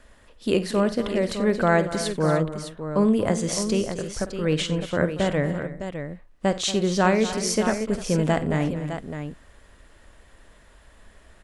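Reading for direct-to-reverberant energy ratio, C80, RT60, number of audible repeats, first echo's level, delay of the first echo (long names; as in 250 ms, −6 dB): no reverb audible, no reverb audible, no reverb audible, 5, −14.5 dB, 51 ms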